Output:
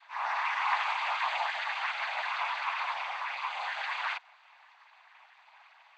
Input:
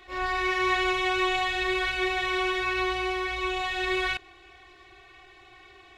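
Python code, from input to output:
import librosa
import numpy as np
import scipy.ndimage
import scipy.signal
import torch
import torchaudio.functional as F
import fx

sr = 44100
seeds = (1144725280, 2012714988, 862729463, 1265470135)

y = fx.vocoder_glide(x, sr, note=51, semitones=-4)
y = scipy.signal.sosfilt(scipy.signal.butter(8, 810.0, 'highpass', fs=sr, output='sos'), y)
y = fx.whisperise(y, sr, seeds[0])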